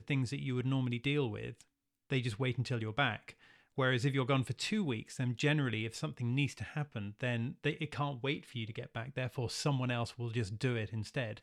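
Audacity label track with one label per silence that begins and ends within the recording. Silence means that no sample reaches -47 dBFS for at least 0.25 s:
1.610000	2.100000	silence
3.310000	3.780000	silence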